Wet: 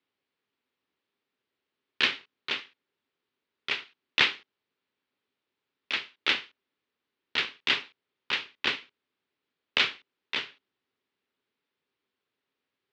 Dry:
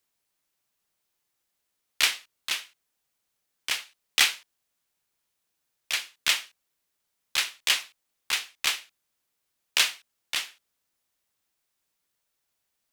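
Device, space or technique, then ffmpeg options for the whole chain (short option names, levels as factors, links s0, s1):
ring modulator pedal into a guitar cabinet: -af "aeval=exprs='val(0)*sgn(sin(2*PI*140*n/s))':c=same,highpass=99,equalizer=f=260:t=q:w=4:g=7,equalizer=f=400:t=q:w=4:g=9,equalizer=f=700:t=q:w=4:g=-5,lowpass=f=3800:w=0.5412,lowpass=f=3800:w=1.3066"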